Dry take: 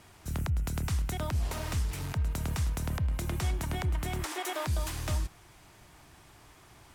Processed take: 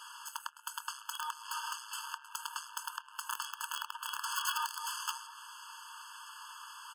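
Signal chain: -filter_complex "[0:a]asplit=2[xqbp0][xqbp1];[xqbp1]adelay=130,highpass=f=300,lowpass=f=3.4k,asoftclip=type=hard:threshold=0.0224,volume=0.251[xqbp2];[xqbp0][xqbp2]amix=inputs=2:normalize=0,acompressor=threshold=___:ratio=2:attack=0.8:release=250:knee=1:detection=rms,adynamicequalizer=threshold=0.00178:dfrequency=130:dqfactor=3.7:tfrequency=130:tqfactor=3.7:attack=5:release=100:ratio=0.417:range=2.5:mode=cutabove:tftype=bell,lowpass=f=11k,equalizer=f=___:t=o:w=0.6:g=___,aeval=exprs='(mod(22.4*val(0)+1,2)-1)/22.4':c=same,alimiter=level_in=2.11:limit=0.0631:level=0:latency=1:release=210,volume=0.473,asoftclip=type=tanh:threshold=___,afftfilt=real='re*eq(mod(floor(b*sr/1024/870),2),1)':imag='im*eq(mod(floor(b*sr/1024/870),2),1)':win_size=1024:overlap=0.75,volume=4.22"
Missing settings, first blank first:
0.0178, 330, 13, 0.0178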